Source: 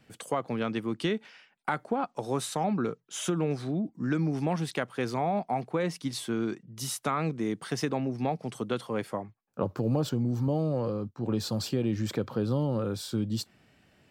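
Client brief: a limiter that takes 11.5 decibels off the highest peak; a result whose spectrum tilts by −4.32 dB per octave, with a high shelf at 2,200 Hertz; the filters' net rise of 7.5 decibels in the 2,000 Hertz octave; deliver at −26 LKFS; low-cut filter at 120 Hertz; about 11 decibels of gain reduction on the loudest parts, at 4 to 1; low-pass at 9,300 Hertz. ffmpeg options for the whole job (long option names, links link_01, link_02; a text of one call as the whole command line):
ffmpeg -i in.wav -af "highpass=120,lowpass=9300,equalizer=frequency=2000:width_type=o:gain=6,highshelf=frequency=2200:gain=7,acompressor=threshold=-36dB:ratio=4,volume=15dB,alimiter=limit=-16dB:level=0:latency=1" out.wav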